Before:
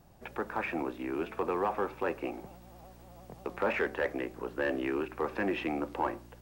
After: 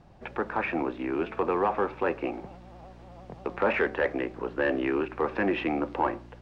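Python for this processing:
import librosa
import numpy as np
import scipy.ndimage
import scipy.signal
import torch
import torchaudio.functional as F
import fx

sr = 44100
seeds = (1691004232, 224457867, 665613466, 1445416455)

y = scipy.signal.sosfilt(scipy.signal.butter(2, 3900.0, 'lowpass', fs=sr, output='sos'), x)
y = y * librosa.db_to_amplitude(5.0)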